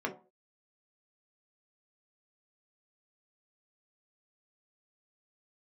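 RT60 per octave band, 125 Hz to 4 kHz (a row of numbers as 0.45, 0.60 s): 0.35, 0.35, 0.40, 0.35, 0.25, 0.15 s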